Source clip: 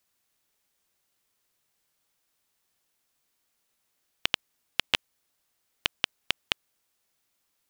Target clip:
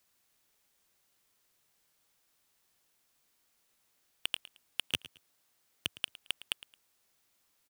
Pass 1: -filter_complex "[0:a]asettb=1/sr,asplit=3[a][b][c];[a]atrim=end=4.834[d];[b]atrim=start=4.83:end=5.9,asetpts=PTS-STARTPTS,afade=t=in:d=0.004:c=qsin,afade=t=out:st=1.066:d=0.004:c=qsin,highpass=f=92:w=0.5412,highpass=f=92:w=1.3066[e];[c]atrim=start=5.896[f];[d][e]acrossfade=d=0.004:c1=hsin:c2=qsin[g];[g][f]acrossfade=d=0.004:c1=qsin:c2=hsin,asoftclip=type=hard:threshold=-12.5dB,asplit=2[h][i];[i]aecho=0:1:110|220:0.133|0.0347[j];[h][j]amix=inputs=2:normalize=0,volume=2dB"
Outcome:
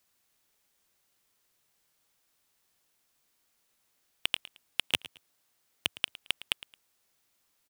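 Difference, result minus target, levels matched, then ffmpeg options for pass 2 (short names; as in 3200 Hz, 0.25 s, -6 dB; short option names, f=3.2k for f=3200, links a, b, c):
hard clip: distortion -4 dB
-filter_complex "[0:a]asettb=1/sr,asplit=3[a][b][c];[a]atrim=end=4.834[d];[b]atrim=start=4.83:end=5.9,asetpts=PTS-STARTPTS,afade=t=in:d=0.004:c=qsin,afade=t=out:st=1.066:d=0.004:c=qsin,highpass=f=92:w=0.5412,highpass=f=92:w=1.3066[e];[c]atrim=start=5.896[f];[d][e]acrossfade=d=0.004:c1=hsin:c2=qsin[g];[g][f]acrossfade=d=0.004:c1=qsin:c2=hsin,asoftclip=type=hard:threshold=-19dB,asplit=2[h][i];[i]aecho=0:1:110|220:0.133|0.0347[j];[h][j]amix=inputs=2:normalize=0,volume=2dB"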